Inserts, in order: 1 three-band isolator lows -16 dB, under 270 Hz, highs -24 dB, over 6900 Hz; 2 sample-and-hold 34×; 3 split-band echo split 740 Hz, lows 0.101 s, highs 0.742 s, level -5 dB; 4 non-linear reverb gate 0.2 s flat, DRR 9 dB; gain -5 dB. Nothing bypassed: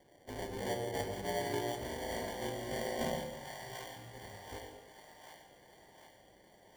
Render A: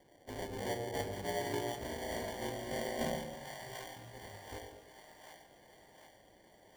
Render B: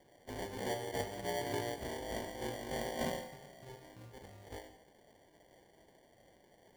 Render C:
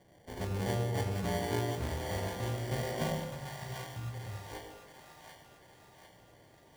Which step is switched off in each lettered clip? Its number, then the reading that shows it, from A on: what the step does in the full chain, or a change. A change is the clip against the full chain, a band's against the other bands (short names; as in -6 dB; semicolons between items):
4, echo-to-direct -2.0 dB to -3.5 dB; 3, echo-to-direct -2.0 dB to -9.0 dB; 1, 125 Hz band +11.0 dB